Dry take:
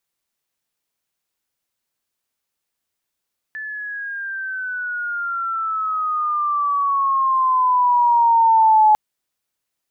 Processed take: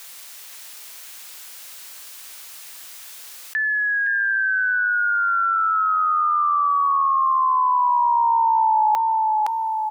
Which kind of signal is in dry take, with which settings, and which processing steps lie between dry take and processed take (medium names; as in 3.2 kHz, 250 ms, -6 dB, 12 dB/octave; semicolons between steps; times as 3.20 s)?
gliding synth tone sine, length 5.40 s, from 1.75 kHz, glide -12.5 st, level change +18 dB, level -9 dB
high-pass 1.4 kHz 6 dB/octave; on a send: feedback delay 515 ms, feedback 23%, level -8 dB; on the sum: level flattener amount 70%